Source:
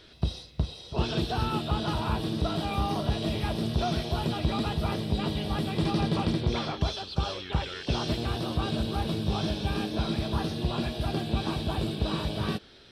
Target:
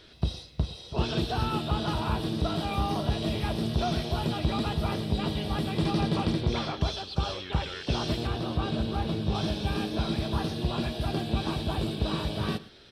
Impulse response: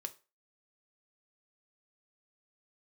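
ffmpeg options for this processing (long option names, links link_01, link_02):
-filter_complex "[0:a]asettb=1/sr,asplit=3[link_01][link_02][link_03];[link_01]atrim=end=8.274[link_04];[link_02]atrim=start=8.27:end=9.35,asetpts=PTS-STARTPTS,afade=type=in:duration=0.004:curve=qsin,afade=type=out:start_time=1.076:duration=0.004:curve=qsin,lowpass=frequency=4000:poles=1[link_05];[link_03]atrim=start=9.346[link_06];[link_04][link_05]acrossfade=duration=0.004:curve1=hsin:curve2=qsin[link_07];[link_07][link_06]acrossfade=duration=0.004:curve1=qsin:curve2=hsin,aecho=1:1:112:0.112"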